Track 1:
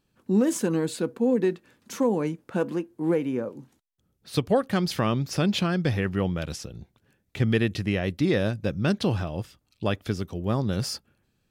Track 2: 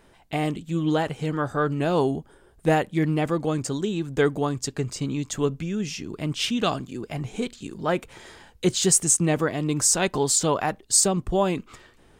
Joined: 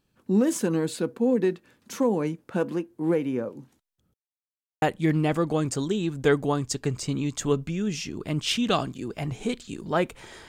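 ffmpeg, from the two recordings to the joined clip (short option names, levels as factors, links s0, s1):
-filter_complex "[0:a]apad=whole_dur=10.48,atrim=end=10.48,asplit=2[s0][s1];[s0]atrim=end=4.14,asetpts=PTS-STARTPTS,afade=t=out:st=4.136:d=0.004:c=hsin[s2];[s1]atrim=start=4.14:end=4.82,asetpts=PTS-STARTPTS,volume=0[s3];[1:a]atrim=start=2.75:end=8.41,asetpts=PTS-STARTPTS,afade=t=in:d=0.004:c=hsin[s4];[s2][s3][s4]concat=n=3:v=0:a=1"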